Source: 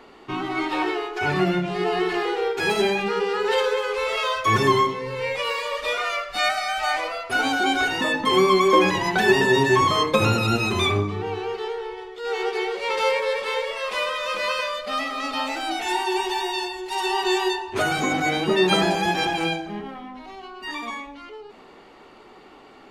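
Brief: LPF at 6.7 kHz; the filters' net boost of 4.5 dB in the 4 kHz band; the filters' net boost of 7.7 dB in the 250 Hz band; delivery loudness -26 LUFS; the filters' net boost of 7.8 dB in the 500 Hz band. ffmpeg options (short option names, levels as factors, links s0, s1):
-af "lowpass=6700,equalizer=f=250:t=o:g=8,equalizer=f=500:t=o:g=7,equalizer=f=4000:t=o:g=6,volume=0.355"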